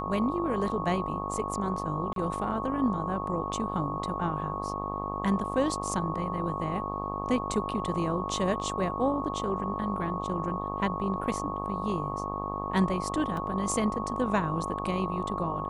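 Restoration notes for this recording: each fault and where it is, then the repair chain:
mains buzz 50 Hz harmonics 25 −36 dBFS
whistle 1,100 Hz −35 dBFS
0:02.13–0:02.16: drop-out 32 ms
0:13.37: drop-out 2.5 ms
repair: hum removal 50 Hz, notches 25
notch filter 1,100 Hz, Q 30
repair the gap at 0:02.13, 32 ms
repair the gap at 0:13.37, 2.5 ms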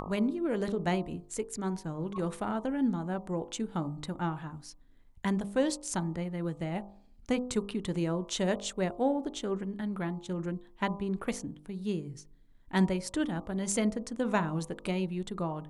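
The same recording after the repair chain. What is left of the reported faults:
none of them is left

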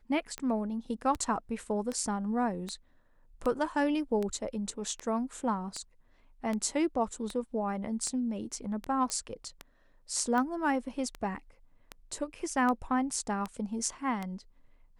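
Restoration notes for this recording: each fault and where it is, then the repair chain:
scratch tick 78 rpm −21 dBFS
0:09.10: click −19 dBFS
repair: click removal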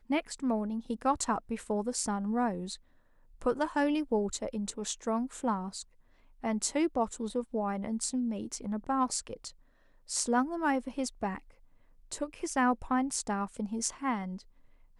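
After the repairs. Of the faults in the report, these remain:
0:09.10: click

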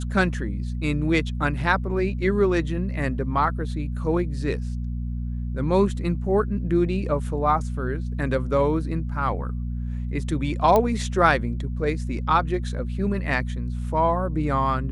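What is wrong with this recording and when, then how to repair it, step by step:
mains hum 60 Hz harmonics 4 −28 dBFS
0:10.76: click −8 dBFS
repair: click removal
hum removal 60 Hz, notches 4

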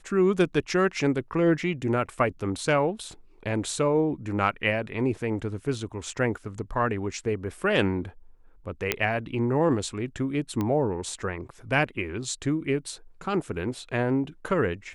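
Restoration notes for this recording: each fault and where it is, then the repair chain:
0:08.92: click −7 dBFS
0:10.61: click −16 dBFS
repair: click removal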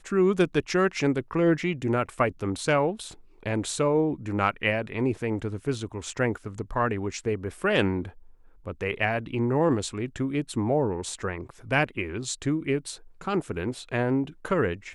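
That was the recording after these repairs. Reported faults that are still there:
none of them is left

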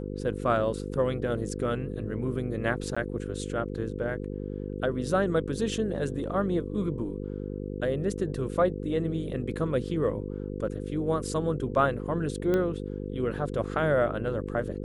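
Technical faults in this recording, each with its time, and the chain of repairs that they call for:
mains buzz 50 Hz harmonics 10 −35 dBFS
0:02.95–0:02.96: drop-out 15 ms
0:12.54: click −16 dBFS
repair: click removal
hum removal 50 Hz, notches 10
repair the gap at 0:02.95, 15 ms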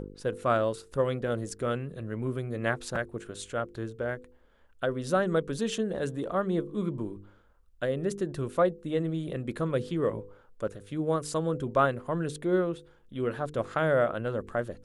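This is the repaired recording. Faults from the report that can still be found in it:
none of them is left

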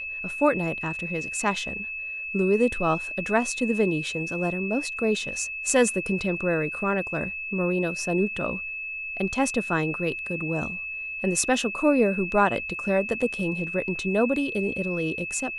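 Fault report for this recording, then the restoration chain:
whistle 2,600 Hz −31 dBFS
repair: notch filter 2,600 Hz, Q 30

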